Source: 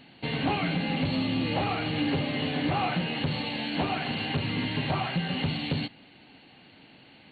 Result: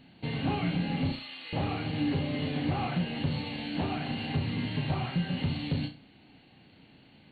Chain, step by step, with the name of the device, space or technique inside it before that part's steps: 1.12–1.53 s: high-pass 1.3 kHz 12 dB/octave; bass shelf 250 Hz +10 dB; flutter echo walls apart 5.8 m, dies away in 0.29 s; exciter from parts (in parallel at -13 dB: high-pass 3 kHz 12 dB/octave + saturation -31 dBFS, distortion -21 dB); on the sum: trim -7.5 dB

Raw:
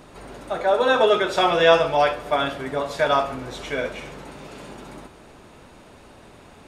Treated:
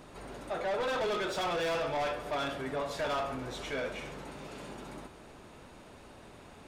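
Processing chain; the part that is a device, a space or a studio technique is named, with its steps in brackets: saturation between pre-emphasis and de-emphasis (treble shelf 4.3 kHz +9.5 dB; saturation -24 dBFS, distortion -5 dB; treble shelf 4.3 kHz -9.5 dB); trim -5 dB

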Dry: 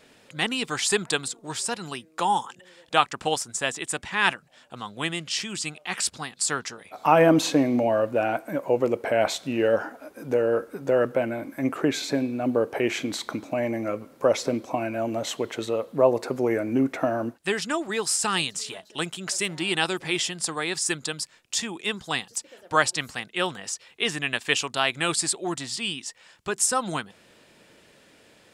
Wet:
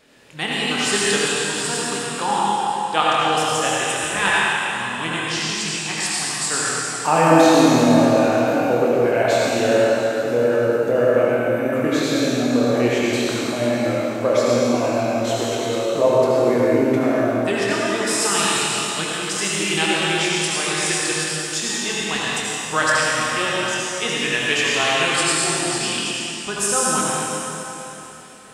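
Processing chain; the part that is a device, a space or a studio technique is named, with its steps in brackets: tunnel (flutter echo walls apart 4.3 m, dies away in 0.22 s; reverberation RT60 3.5 s, pre-delay 67 ms, DRR -6 dB); trim -1 dB

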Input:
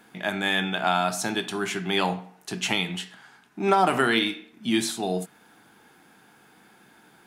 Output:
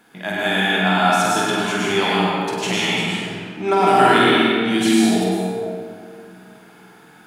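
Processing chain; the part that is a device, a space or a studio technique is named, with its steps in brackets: tunnel (flutter echo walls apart 8.3 m, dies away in 0.65 s; reverberation RT60 2.2 s, pre-delay 98 ms, DRR -5.5 dB)

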